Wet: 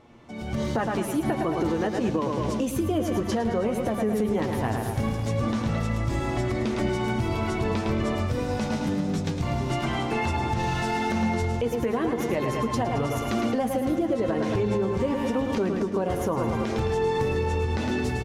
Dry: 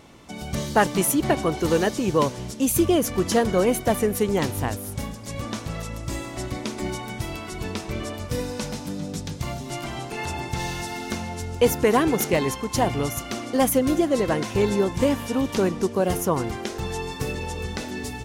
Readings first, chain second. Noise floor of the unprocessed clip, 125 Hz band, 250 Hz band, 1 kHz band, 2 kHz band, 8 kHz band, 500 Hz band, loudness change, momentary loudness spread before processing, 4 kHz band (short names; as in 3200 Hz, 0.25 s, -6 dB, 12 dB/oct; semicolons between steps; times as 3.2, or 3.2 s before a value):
-36 dBFS, +2.0 dB, -1.0 dB, -1.0 dB, -2.0 dB, -11.0 dB, -2.5 dB, -1.5 dB, 11 LU, -5.0 dB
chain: doubler 13 ms -14 dB; feedback echo 0.108 s, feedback 53%, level -8.5 dB; compressor 12:1, threshold -27 dBFS, peak gain reduction 15 dB; LPF 1700 Hz 6 dB/oct; flange 0.16 Hz, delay 8.4 ms, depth 1.4 ms, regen +45%; notches 50/100/150/200 Hz; limiter -28.5 dBFS, peak gain reduction 8 dB; AGC gain up to 12 dB